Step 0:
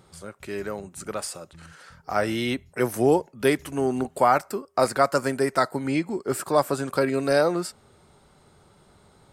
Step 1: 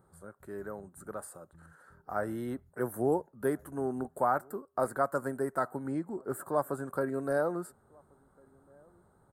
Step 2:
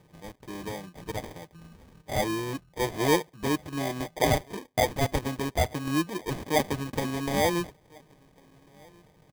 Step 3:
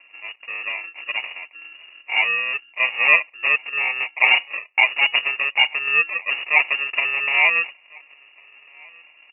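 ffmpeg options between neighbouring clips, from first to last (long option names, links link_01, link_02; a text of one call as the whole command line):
ffmpeg -i in.wav -filter_complex "[0:a]firequalizer=gain_entry='entry(1600,0);entry(2400,-23);entry(4100,-16);entry(6700,-23)':delay=0.05:min_phase=1,asplit=2[link_01][link_02];[link_02]adelay=1399,volume=-29dB,highshelf=frequency=4000:gain=-31.5[link_03];[link_01][link_03]amix=inputs=2:normalize=0,aexciter=amount=12.1:drive=5.2:freq=7500,volume=-9dB" out.wav
ffmpeg -i in.wav -filter_complex "[0:a]aecho=1:1:6.3:0.76,asplit=2[link_01][link_02];[link_02]asoftclip=type=tanh:threshold=-24.5dB,volume=-3dB[link_03];[link_01][link_03]amix=inputs=2:normalize=0,acrusher=samples=32:mix=1:aa=0.000001" out.wav
ffmpeg -i in.wav -af "lowpass=frequency=2500:width_type=q:width=0.5098,lowpass=frequency=2500:width_type=q:width=0.6013,lowpass=frequency=2500:width_type=q:width=0.9,lowpass=frequency=2500:width_type=q:width=2.563,afreqshift=-2900,volume=8dB" out.wav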